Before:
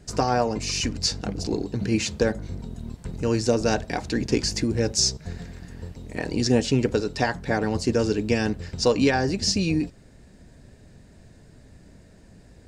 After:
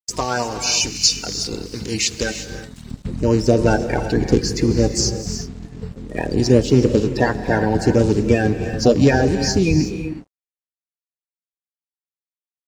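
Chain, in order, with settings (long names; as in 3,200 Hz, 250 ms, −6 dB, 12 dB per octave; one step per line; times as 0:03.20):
spectral magnitudes quantised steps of 30 dB
noise gate −39 dBFS, range −21 dB
tilt shelving filter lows −6.5 dB, about 1,400 Hz, from 0:02.90 lows +3.5 dB
reverb whose tail is shaped and stops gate 390 ms rising, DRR 8 dB
dead-zone distortion −51 dBFS
level +4.5 dB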